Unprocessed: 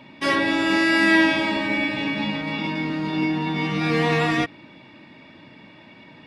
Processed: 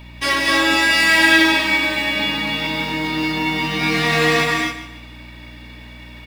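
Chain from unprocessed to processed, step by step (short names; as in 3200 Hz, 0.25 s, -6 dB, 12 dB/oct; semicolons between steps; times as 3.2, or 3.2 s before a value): tilt +3 dB/oct; in parallel at -8.5 dB: companded quantiser 4-bit; on the sum: feedback echo 0.148 s, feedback 30%, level -12.5 dB; hum 60 Hz, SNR 17 dB; non-linear reverb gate 0.29 s rising, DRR -0.5 dB; gain -2 dB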